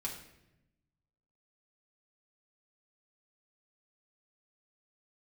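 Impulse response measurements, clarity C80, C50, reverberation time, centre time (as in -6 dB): 9.0 dB, 6.5 dB, 0.90 s, 27 ms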